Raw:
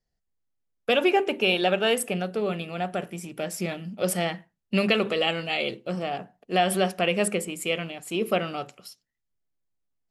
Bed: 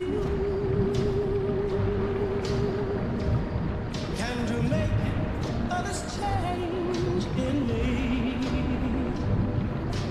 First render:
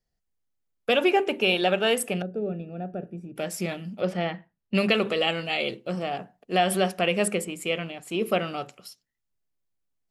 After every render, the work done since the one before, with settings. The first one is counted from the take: 2.22–3.36 s: boxcar filter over 42 samples; 4.01–4.75 s: distance through air 230 m; 7.44–8.19 s: treble shelf 5.6 kHz -6 dB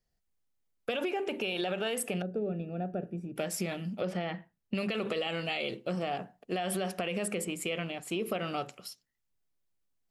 peak limiter -19 dBFS, peak gain reduction 10 dB; compression, threshold -29 dBFS, peak gain reduction 6 dB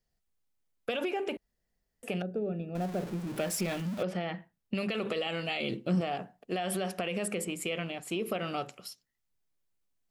1.37–2.03 s: room tone; 2.75–4.03 s: jump at every zero crossing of -38 dBFS; 5.60–6.01 s: resonant low shelf 360 Hz +6.5 dB, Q 1.5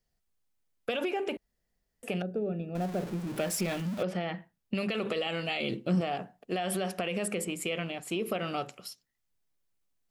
trim +1 dB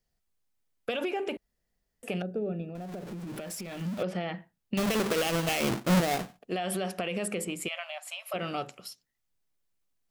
2.67–3.81 s: compression 10:1, threshold -35 dBFS; 4.77–6.39 s: square wave that keeps the level; 7.68–8.34 s: brick-wall FIR high-pass 540 Hz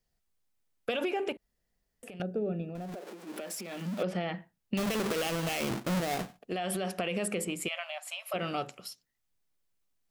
1.32–2.20 s: compression, threshold -43 dBFS; 2.94–4.02 s: high-pass 370 Hz -> 150 Hz 24 dB/octave; 4.76–6.87 s: compression, threshold -28 dBFS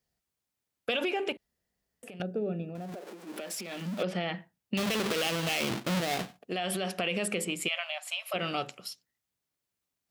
high-pass 65 Hz; dynamic bell 3.4 kHz, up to +6 dB, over -50 dBFS, Q 0.8

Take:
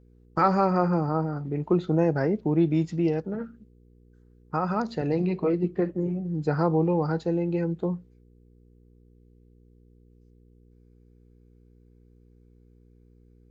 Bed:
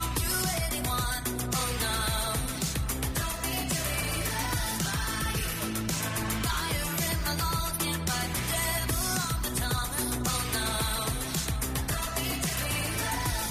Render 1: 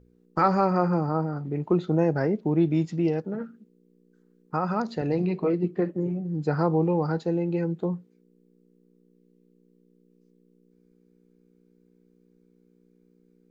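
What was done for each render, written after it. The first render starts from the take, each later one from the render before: de-hum 60 Hz, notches 2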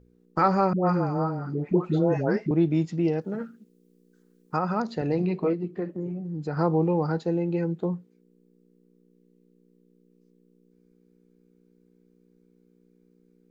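0.73–2.51 s: phase dispersion highs, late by 137 ms, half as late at 770 Hz; 3.21–4.59 s: treble shelf 2.9 kHz +10 dB; 5.53–6.57 s: compression 1.5:1, threshold -35 dBFS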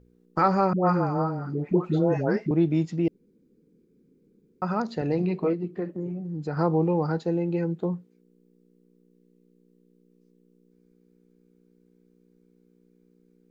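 0.69–1.22 s: peaking EQ 1.1 kHz +3.5 dB 1.4 oct; 3.08–4.62 s: room tone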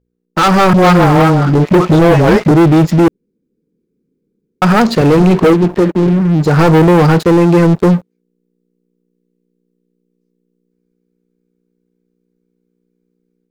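waveshaping leveller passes 5; level rider gain up to 6 dB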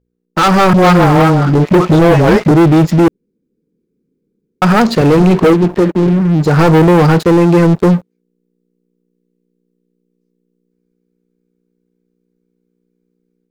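no audible change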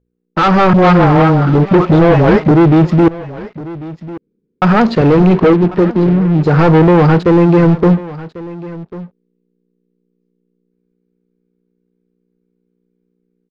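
distance through air 190 m; delay 1095 ms -18 dB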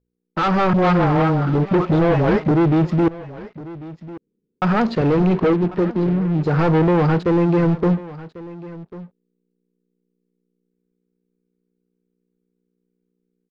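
trim -8 dB

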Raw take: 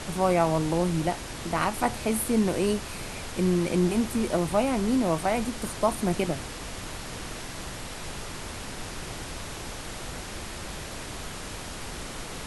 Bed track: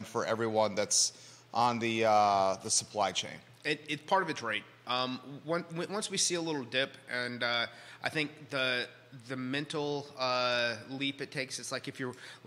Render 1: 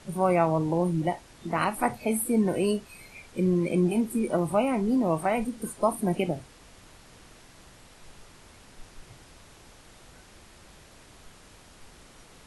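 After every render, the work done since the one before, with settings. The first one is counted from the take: noise print and reduce 15 dB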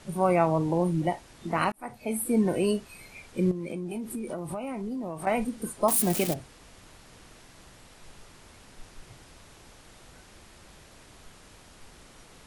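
1.72–2.33 s: fade in; 3.51–5.27 s: compression 12:1, threshold -30 dBFS; 5.88–6.34 s: zero-crossing glitches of -19.5 dBFS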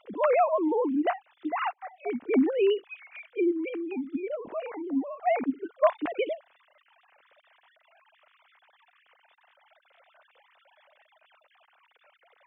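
formants replaced by sine waves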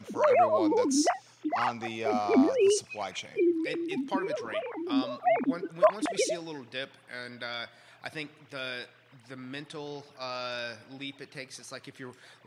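add bed track -5.5 dB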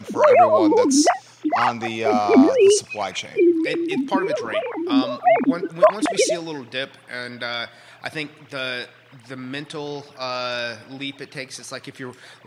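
trim +9.5 dB; peak limiter -3 dBFS, peak gain reduction 2.5 dB

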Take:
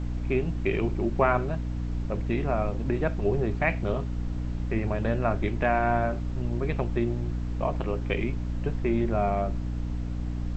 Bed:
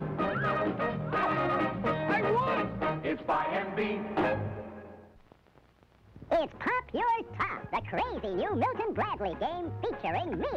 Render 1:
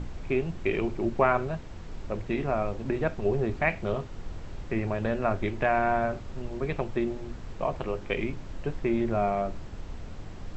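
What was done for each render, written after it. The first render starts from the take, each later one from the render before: hum notches 60/120/180/240/300 Hz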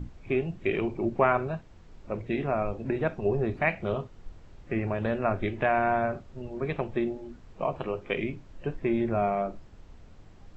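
noise print and reduce 11 dB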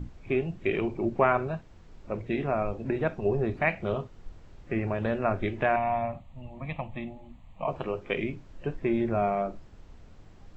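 5.76–7.68 s: static phaser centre 1.5 kHz, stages 6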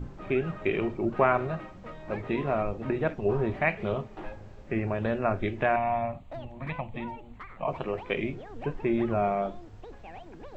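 add bed -14 dB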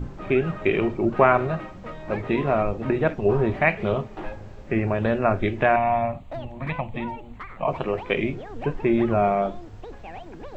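trim +6 dB

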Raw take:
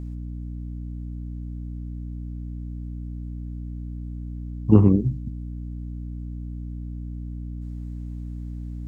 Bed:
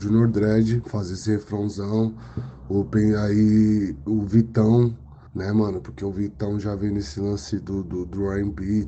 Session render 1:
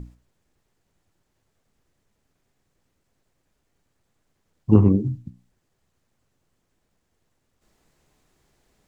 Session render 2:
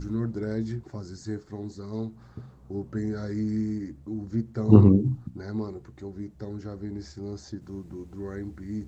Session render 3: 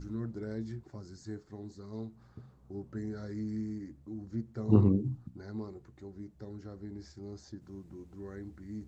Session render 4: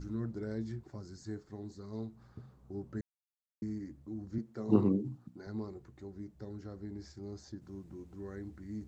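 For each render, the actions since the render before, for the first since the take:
hum notches 60/120/180/240/300 Hz
add bed -11 dB
trim -8.5 dB
3.01–3.62 s: mute; 4.38–5.47 s: high-pass 190 Hz

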